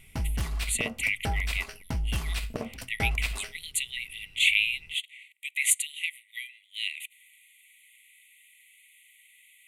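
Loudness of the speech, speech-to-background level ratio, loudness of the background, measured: −29.0 LKFS, 5.0 dB, −34.0 LKFS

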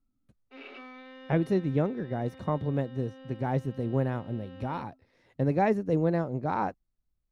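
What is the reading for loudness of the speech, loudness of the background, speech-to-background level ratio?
−30.0 LKFS, −49.0 LKFS, 19.0 dB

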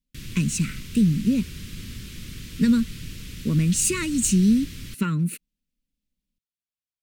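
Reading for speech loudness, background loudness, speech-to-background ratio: −23.0 LKFS, −38.5 LKFS, 15.5 dB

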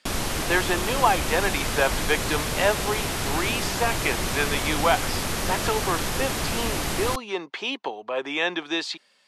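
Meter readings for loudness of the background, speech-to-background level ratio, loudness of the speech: −27.0 LKFS, 0.5 dB, −26.5 LKFS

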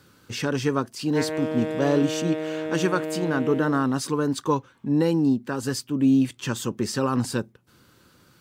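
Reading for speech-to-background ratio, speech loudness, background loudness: 5.5 dB, −25.0 LKFS, −30.5 LKFS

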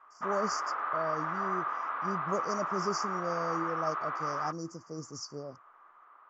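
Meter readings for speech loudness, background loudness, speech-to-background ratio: −38.0 LKFS, −34.0 LKFS, −4.0 dB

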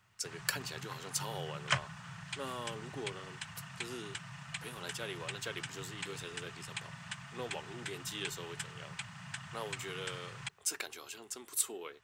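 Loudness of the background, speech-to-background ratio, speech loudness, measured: −43.5 LKFS, 1.5 dB, −42.0 LKFS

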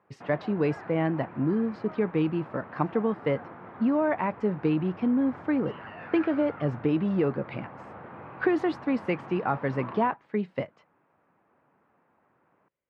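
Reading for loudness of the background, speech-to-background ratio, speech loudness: −44.0 LKFS, 16.0 dB, −28.0 LKFS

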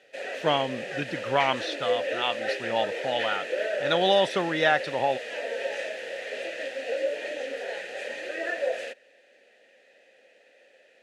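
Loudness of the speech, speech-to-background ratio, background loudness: −27.5 LKFS, 4.5 dB, −32.0 LKFS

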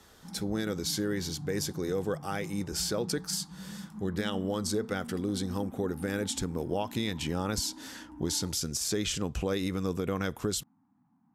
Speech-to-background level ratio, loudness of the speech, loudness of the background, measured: 12.5 dB, −32.5 LKFS, −45.0 LKFS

